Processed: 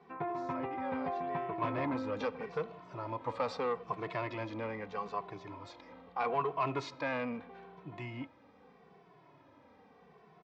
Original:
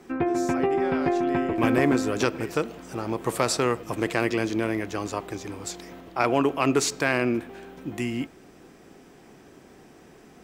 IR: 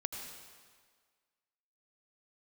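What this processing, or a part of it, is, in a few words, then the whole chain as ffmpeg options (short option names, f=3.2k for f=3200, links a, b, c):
barber-pole flanger into a guitar amplifier: -filter_complex "[0:a]asplit=2[a][b];[b]adelay=2.2,afreqshift=-0.79[c];[a][c]amix=inputs=2:normalize=1,asoftclip=type=tanh:threshold=-20.5dB,highpass=100,equalizer=f=230:t=q:w=4:g=-5,equalizer=f=350:t=q:w=4:g=-10,equalizer=f=500:t=q:w=4:g=3,equalizer=f=1k:t=q:w=4:g=9,equalizer=f=1.6k:t=q:w=4:g=-4,equalizer=f=2.9k:t=q:w=4:g=-6,lowpass=f=3.8k:w=0.5412,lowpass=f=3.8k:w=1.3066,volume=-5.5dB"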